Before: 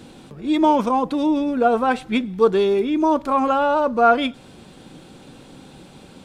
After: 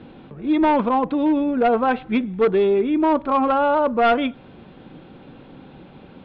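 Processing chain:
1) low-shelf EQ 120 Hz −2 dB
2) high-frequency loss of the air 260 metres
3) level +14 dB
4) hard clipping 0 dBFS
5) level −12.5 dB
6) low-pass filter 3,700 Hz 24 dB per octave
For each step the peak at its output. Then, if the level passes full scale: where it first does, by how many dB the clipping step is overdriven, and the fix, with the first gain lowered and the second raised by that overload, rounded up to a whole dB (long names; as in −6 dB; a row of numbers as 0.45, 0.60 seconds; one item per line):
−3.5, −5.0, +9.0, 0.0, −12.5, −11.0 dBFS
step 3, 9.0 dB
step 3 +5 dB, step 5 −3.5 dB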